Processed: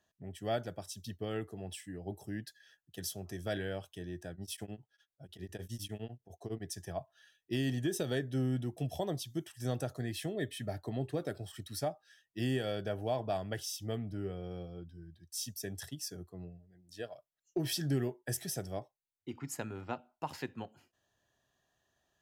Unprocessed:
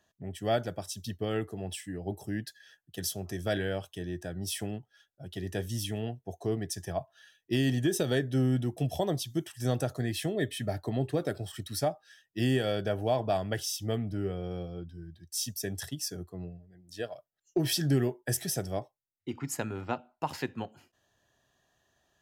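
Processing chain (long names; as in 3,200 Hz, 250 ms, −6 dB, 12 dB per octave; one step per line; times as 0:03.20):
0:04.32–0:06.64: tremolo along a rectified sine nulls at 9.9 Hz
level −6 dB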